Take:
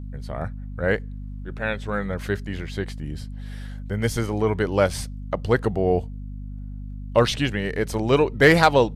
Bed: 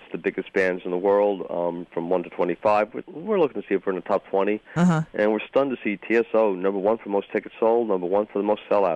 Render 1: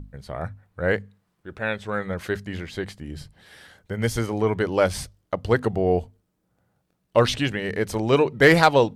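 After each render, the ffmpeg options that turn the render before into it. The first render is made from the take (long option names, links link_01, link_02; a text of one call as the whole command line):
ffmpeg -i in.wav -af "bandreject=frequency=50:width_type=h:width=6,bandreject=frequency=100:width_type=h:width=6,bandreject=frequency=150:width_type=h:width=6,bandreject=frequency=200:width_type=h:width=6,bandreject=frequency=250:width_type=h:width=6" out.wav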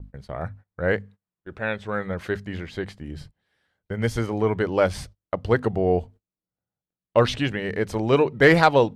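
ffmpeg -i in.wav -af "highshelf=frequency=5600:gain=-10,agate=range=-22dB:threshold=-43dB:ratio=16:detection=peak" out.wav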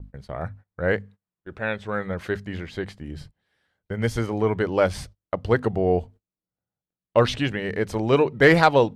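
ffmpeg -i in.wav -af anull out.wav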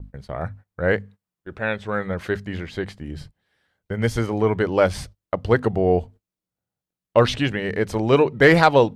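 ffmpeg -i in.wav -af "volume=2.5dB,alimiter=limit=-3dB:level=0:latency=1" out.wav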